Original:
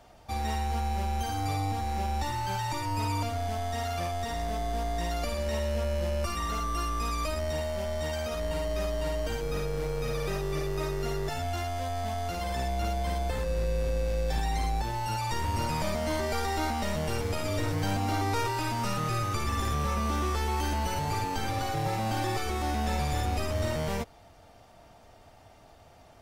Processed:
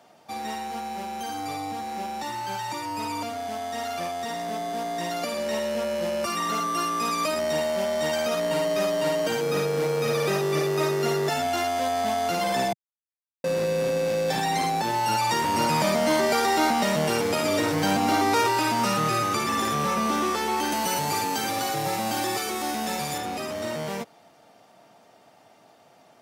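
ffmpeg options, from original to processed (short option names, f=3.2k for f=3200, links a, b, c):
-filter_complex "[0:a]asettb=1/sr,asplit=3[a][b][c];[a]atrim=end=20.724[d];[b]atrim=start=20.72:end=23.18,asetpts=PTS-STARTPTS,afade=t=in:d=0.004:c=qsin,afade=t=out:st=2.456:d=0.004:c=qsin,aemphasis=mode=production:type=cd[e];[c]atrim=start=23.176[f];[d][e]acrossfade=d=0.004:c1=hsin:c2=qsin[g];[g][f]acrossfade=d=0.004:c1=qsin:c2=hsin,asplit=3[h][i][j];[h]atrim=end=12.73,asetpts=PTS-STARTPTS,afade=t=out:st=12.726:d=0.004:c=hsin[k];[i]atrim=start=12.73:end=13.44,asetpts=PTS-STARTPTS,volume=0[l];[j]atrim=start=13.44,asetpts=PTS-STARTPTS,afade=t=in:d=0.004:c=hsin[m];[k][l][m]concat=n=3:v=0:a=1,highpass=f=160:w=0.5412,highpass=f=160:w=1.3066,dynaudnorm=f=390:g=31:m=8dB,volume=1dB"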